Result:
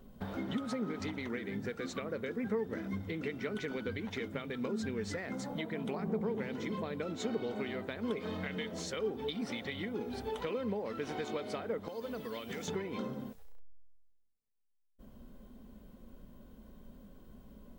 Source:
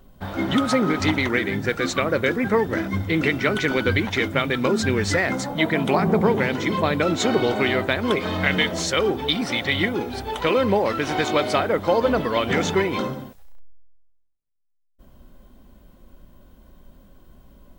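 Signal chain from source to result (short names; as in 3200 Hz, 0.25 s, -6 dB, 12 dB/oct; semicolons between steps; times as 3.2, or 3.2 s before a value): 11.88–12.68 pre-emphasis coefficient 0.8; compressor 4:1, threshold -34 dBFS, peak gain reduction 16.5 dB; small resonant body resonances 220/440 Hz, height 9 dB, ringing for 40 ms; gain -7 dB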